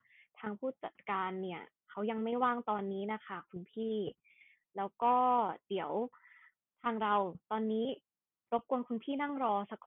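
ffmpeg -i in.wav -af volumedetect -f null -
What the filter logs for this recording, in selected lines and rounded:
mean_volume: -36.5 dB
max_volume: -18.9 dB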